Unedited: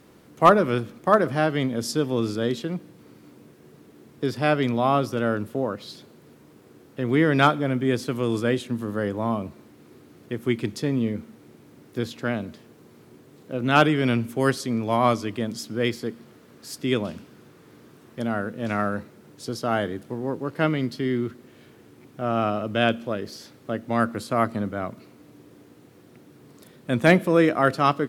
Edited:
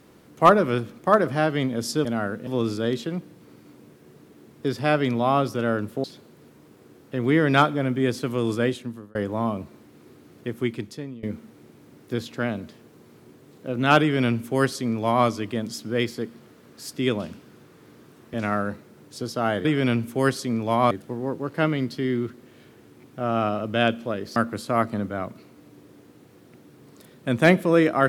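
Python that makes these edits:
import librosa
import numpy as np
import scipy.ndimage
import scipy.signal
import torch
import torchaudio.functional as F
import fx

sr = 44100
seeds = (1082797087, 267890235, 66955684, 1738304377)

y = fx.edit(x, sr, fx.cut(start_s=5.62, length_s=0.27),
    fx.fade_out_span(start_s=8.51, length_s=0.49),
    fx.fade_out_to(start_s=10.34, length_s=0.74, floor_db=-22.5),
    fx.duplicate(start_s=13.86, length_s=1.26, to_s=19.92),
    fx.move(start_s=18.19, length_s=0.42, to_s=2.05),
    fx.cut(start_s=23.37, length_s=0.61), tone=tone)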